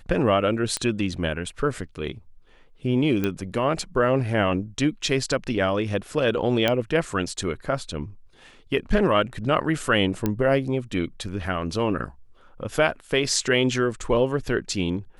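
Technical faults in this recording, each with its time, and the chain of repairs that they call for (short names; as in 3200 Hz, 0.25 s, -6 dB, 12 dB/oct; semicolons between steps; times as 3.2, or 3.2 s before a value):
0.77 pop -11 dBFS
3.24 pop -12 dBFS
6.68 pop -8 dBFS
10.26 pop -10 dBFS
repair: de-click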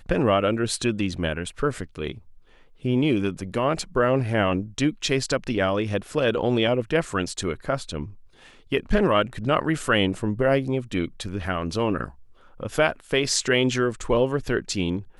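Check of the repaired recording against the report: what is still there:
none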